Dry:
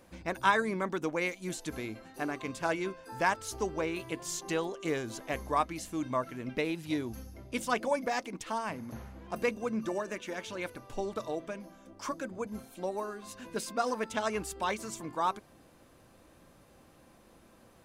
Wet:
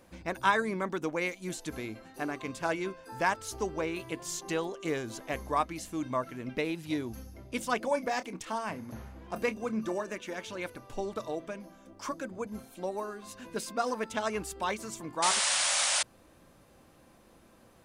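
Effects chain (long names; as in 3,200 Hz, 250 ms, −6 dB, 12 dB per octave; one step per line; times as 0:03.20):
0:07.90–0:10.04: double-tracking delay 28 ms −12.5 dB
0:15.22–0:16.03: sound drawn into the spectrogram noise 520–10,000 Hz −28 dBFS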